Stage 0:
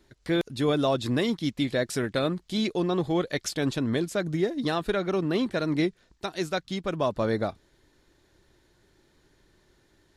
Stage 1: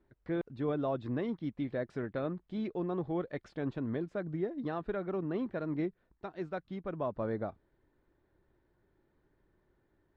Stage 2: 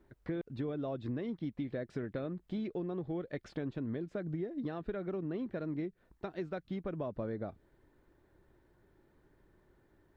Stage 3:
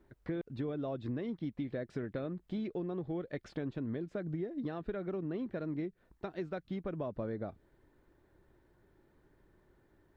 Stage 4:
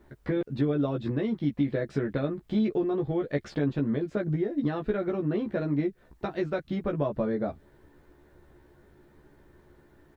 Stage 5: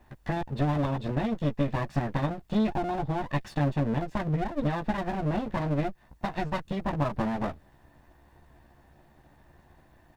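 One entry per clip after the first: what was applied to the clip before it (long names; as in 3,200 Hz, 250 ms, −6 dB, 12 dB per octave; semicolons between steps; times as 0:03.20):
low-pass filter 1,500 Hz 12 dB per octave; level −8.5 dB
dynamic equaliser 1,000 Hz, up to −7 dB, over −52 dBFS, Q 1.2; downward compressor, threshold −40 dBFS, peak gain reduction 10 dB; level +5.5 dB
no processing that can be heard
double-tracking delay 14 ms −2.5 dB; level +8 dB
lower of the sound and its delayed copy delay 1.1 ms; level +1.5 dB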